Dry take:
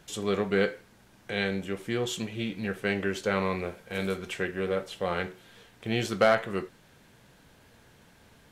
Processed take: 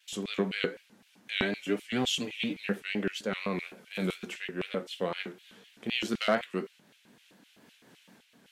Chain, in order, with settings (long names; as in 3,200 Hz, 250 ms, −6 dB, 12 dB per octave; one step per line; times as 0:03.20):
0:01.41–0:02.65: comb filter 7.1 ms, depth 94%
pitch vibrato 4.1 Hz 85 cents
auto-filter high-pass square 3.9 Hz 220–2,700 Hz
amplitude modulation by smooth noise, depth 55%